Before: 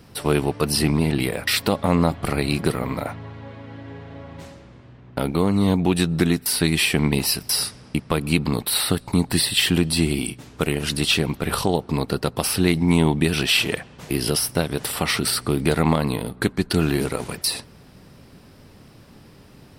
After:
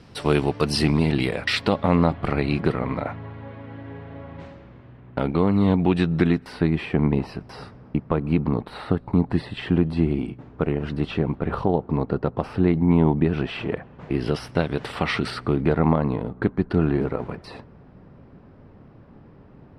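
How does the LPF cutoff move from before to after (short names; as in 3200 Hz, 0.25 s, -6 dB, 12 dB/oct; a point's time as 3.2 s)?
0.9 s 5700 Hz
2.29 s 2500 Hz
6.25 s 2500 Hz
6.71 s 1200 Hz
13.79 s 1200 Hz
14.54 s 2700 Hz
15.26 s 2700 Hz
15.8 s 1300 Hz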